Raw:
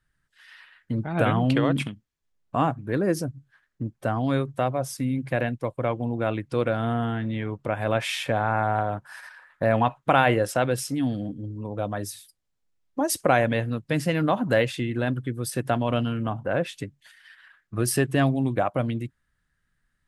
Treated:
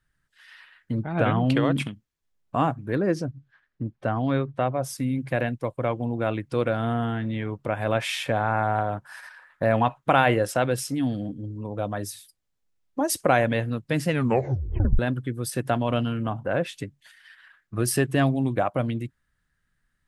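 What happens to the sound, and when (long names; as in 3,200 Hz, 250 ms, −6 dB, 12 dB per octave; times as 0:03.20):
0:01.02–0:01.47: high-frequency loss of the air 100 metres
0:02.95–0:04.81: low-pass filter 5,500 Hz → 3,200 Hz
0:14.09: tape stop 0.90 s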